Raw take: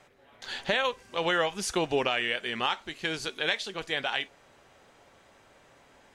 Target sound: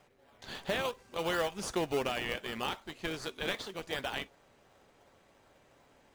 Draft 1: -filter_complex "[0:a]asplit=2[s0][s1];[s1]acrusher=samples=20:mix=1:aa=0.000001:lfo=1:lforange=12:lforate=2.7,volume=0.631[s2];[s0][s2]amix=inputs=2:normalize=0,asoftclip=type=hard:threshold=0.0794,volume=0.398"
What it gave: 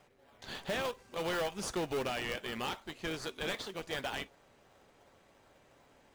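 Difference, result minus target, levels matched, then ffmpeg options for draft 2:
hard clipper: distortion +13 dB
-filter_complex "[0:a]asplit=2[s0][s1];[s1]acrusher=samples=20:mix=1:aa=0.000001:lfo=1:lforange=12:lforate=2.7,volume=0.631[s2];[s0][s2]amix=inputs=2:normalize=0,asoftclip=type=hard:threshold=0.178,volume=0.398"

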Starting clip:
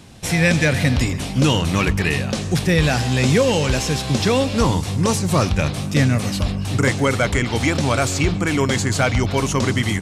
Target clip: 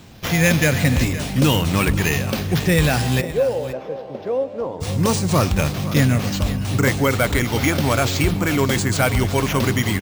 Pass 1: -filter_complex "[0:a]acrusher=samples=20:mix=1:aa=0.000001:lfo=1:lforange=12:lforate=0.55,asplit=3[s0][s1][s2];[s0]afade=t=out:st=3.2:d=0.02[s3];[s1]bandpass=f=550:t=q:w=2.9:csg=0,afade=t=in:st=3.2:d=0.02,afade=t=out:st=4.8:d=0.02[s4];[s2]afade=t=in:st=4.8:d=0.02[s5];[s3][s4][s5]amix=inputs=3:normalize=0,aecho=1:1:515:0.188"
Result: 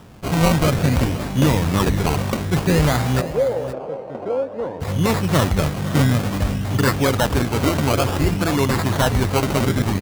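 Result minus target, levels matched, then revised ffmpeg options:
decimation with a swept rate: distortion +8 dB
-filter_complex "[0:a]acrusher=samples=4:mix=1:aa=0.000001:lfo=1:lforange=2.4:lforate=0.55,asplit=3[s0][s1][s2];[s0]afade=t=out:st=3.2:d=0.02[s3];[s1]bandpass=f=550:t=q:w=2.9:csg=0,afade=t=in:st=3.2:d=0.02,afade=t=out:st=4.8:d=0.02[s4];[s2]afade=t=in:st=4.8:d=0.02[s5];[s3][s4][s5]amix=inputs=3:normalize=0,aecho=1:1:515:0.188"

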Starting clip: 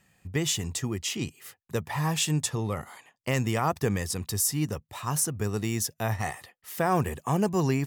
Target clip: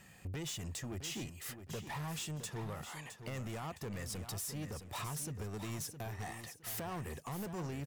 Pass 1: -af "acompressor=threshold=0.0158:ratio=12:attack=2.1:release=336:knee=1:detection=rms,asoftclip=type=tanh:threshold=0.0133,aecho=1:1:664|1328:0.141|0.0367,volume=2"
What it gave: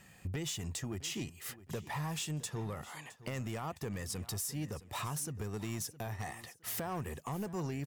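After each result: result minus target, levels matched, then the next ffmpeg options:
echo-to-direct -7.5 dB; saturation: distortion -7 dB
-af "acompressor=threshold=0.0158:ratio=12:attack=2.1:release=336:knee=1:detection=rms,asoftclip=type=tanh:threshold=0.0133,aecho=1:1:664|1328|1992:0.335|0.0871|0.0226,volume=2"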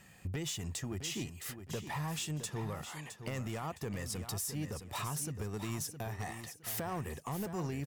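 saturation: distortion -7 dB
-af "acompressor=threshold=0.0158:ratio=12:attack=2.1:release=336:knee=1:detection=rms,asoftclip=type=tanh:threshold=0.00631,aecho=1:1:664|1328|1992:0.335|0.0871|0.0226,volume=2"

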